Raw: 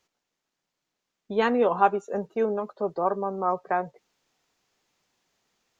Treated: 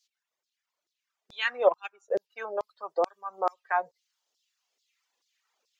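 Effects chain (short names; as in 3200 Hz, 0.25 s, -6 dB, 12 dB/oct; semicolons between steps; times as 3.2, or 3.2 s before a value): reverb removal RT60 1.6 s; LFO high-pass saw down 2.3 Hz 400–5100 Hz; 1.67–2.14 transient shaper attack +4 dB, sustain -10 dB; gain -1.5 dB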